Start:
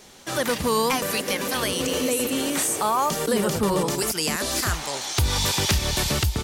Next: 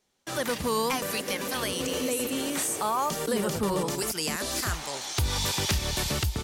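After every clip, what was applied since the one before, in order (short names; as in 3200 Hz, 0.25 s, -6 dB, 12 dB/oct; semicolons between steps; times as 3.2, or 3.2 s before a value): gate with hold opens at -30 dBFS; gain -5 dB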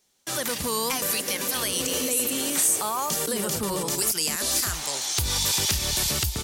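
limiter -20.5 dBFS, peak gain reduction 3.5 dB; high shelf 3800 Hz +11.5 dB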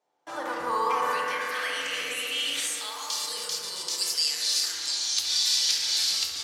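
band-pass sweep 750 Hz -> 4500 Hz, 0.03–3.23; analogue delay 66 ms, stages 1024, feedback 83%, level -5 dB; FDN reverb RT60 1.1 s, low-frequency decay 1×, high-frequency decay 0.45×, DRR 1 dB; gain +3.5 dB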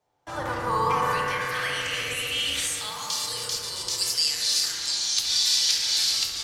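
octaver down 2 oct, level +3 dB; gain +2 dB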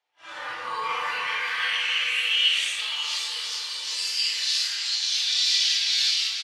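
phase scrambler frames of 0.2 s; band-pass 2700 Hz, Q 1.7; on a send: echo 0.544 s -10 dB; on the sum: gain +6.5 dB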